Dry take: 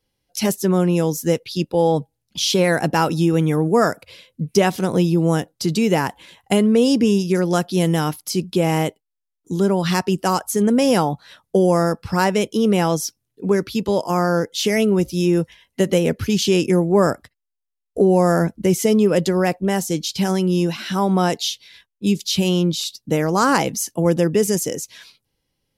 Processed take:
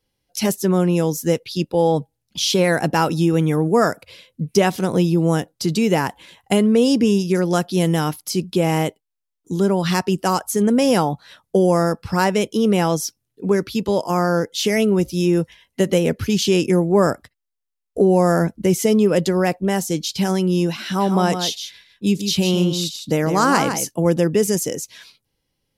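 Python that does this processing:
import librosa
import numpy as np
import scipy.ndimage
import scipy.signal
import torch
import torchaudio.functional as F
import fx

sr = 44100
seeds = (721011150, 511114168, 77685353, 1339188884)

y = fx.echo_single(x, sr, ms=156, db=-8.0, at=(20.99, 23.87), fade=0.02)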